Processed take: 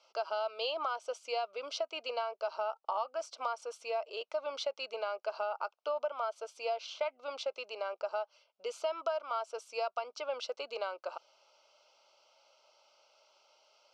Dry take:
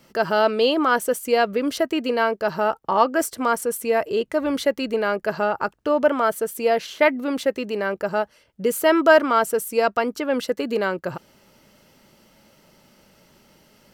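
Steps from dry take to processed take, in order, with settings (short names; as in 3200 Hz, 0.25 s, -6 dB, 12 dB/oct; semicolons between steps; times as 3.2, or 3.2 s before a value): elliptic band-pass 610–5600 Hz, stop band 60 dB; compressor 8:1, threshold -24 dBFS, peak gain reduction 14.5 dB; Butterworth band-stop 1800 Hz, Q 2.1; gain -6.5 dB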